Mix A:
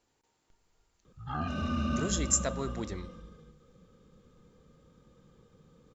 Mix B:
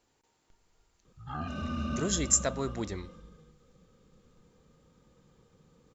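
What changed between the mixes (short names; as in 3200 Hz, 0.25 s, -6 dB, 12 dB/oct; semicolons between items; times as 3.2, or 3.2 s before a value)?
speech +3.5 dB; reverb: off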